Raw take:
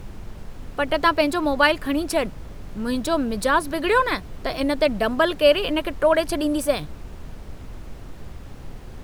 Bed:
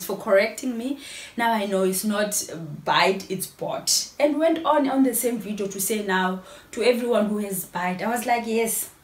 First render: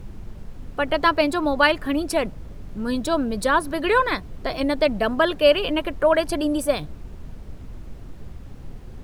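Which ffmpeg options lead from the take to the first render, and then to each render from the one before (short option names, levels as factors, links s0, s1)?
-af "afftdn=nr=6:nf=-39"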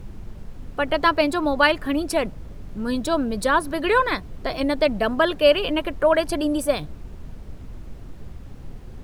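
-af anull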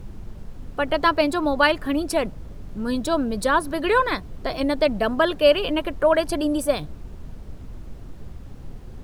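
-af "equalizer=f=2200:w=1.5:g=-2"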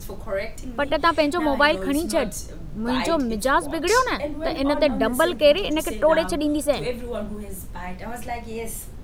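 -filter_complex "[1:a]volume=0.355[s0];[0:a][s0]amix=inputs=2:normalize=0"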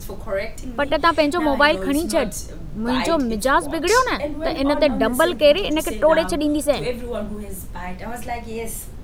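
-af "volume=1.33,alimiter=limit=0.708:level=0:latency=1"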